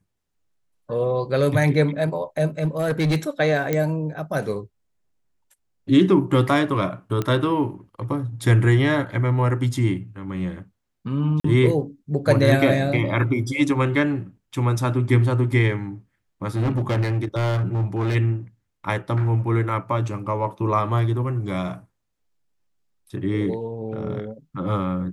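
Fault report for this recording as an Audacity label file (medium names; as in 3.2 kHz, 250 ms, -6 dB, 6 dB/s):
2.590000	3.170000	clipped -17 dBFS
3.730000	3.730000	pop -9 dBFS
7.220000	7.220000	pop -12 dBFS
11.400000	11.440000	dropout 44 ms
16.550000	18.160000	clipped -18 dBFS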